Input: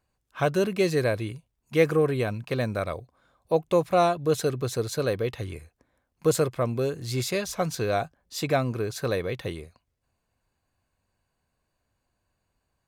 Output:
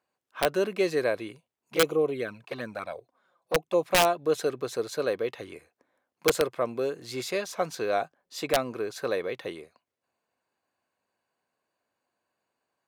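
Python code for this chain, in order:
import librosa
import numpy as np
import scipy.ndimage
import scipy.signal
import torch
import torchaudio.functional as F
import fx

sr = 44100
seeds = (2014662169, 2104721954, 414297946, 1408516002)

y = fx.env_flanger(x, sr, rest_ms=6.5, full_db=-19.5, at=(1.75, 3.83))
y = scipy.signal.sosfilt(scipy.signal.butter(2, 320.0, 'highpass', fs=sr, output='sos'), y)
y = fx.high_shelf(y, sr, hz=4400.0, db=-7.5)
y = (np.mod(10.0 ** (13.5 / 20.0) * y + 1.0, 2.0) - 1.0) / 10.0 ** (13.5 / 20.0)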